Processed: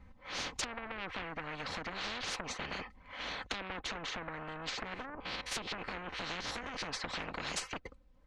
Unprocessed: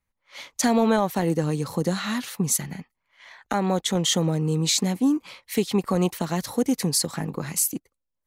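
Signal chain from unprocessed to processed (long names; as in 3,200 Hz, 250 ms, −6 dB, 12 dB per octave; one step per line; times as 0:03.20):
0:04.89–0:06.89: spectrum averaged block by block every 50 ms
treble cut that deepens with the level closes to 1,000 Hz, closed at −17.5 dBFS
low-shelf EQ 150 Hz +12 dB
comb filter 3.9 ms, depth 61%
downward compressor 6 to 1, threshold −26 dBFS, peak gain reduction 14.5 dB
tube saturation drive 29 dB, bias 0.25
head-to-tape spacing loss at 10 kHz 29 dB
every bin compressed towards the loudest bin 10 to 1
level +6.5 dB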